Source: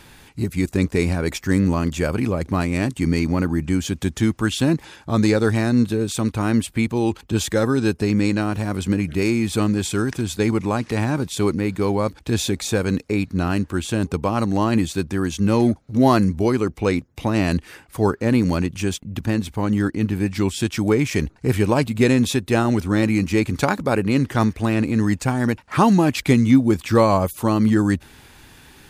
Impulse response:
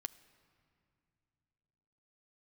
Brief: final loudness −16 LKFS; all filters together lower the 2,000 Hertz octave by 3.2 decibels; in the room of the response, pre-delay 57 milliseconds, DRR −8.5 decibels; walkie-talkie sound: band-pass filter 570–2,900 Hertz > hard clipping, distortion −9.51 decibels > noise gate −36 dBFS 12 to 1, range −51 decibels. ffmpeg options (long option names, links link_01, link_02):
-filter_complex "[0:a]equalizer=frequency=2000:width_type=o:gain=-3,asplit=2[link_01][link_02];[1:a]atrim=start_sample=2205,adelay=57[link_03];[link_02][link_03]afir=irnorm=-1:irlink=0,volume=11.5dB[link_04];[link_01][link_04]amix=inputs=2:normalize=0,highpass=570,lowpass=2900,asoftclip=type=hard:threshold=-12.5dB,agate=range=-51dB:threshold=-36dB:ratio=12,volume=6dB"